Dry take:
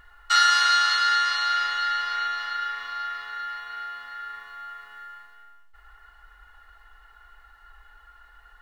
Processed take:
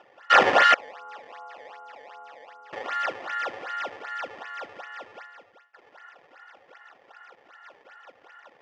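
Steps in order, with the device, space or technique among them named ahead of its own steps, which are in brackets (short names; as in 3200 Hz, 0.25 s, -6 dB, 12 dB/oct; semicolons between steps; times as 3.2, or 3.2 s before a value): 0.74–2.73 inverse Chebyshev low-pass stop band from 1600 Hz, stop band 40 dB; circuit-bent sampling toy (decimation with a swept rate 19×, swing 160% 2.6 Hz; speaker cabinet 450–4900 Hz, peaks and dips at 530 Hz +8 dB, 770 Hz +6 dB, 1200 Hz +4 dB, 1800 Hz +9 dB, 2700 Hz +5 dB, 4100 Hz -7 dB)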